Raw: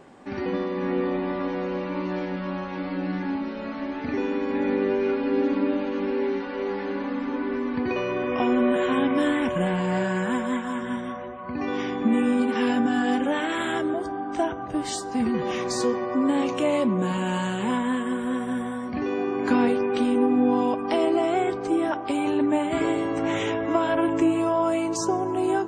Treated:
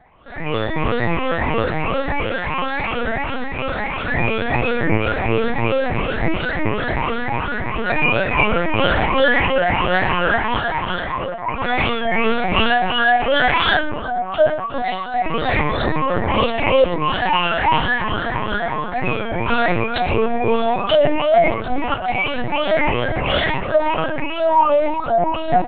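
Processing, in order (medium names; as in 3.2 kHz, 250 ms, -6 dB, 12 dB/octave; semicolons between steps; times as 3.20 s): drifting ripple filter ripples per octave 0.78, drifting +2.9 Hz, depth 17 dB; high-pass 580 Hz 12 dB/octave; dynamic bell 2.7 kHz, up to +5 dB, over -46 dBFS, Q 1.5; level rider gain up to 13 dB; frequency shift -50 Hz; on a send: delay 115 ms -11.5 dB; on the sum: LPC vocoder at 8 kHz pitch kept; warped record 33 1/3 rpm, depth 100 cents; trim -2 dB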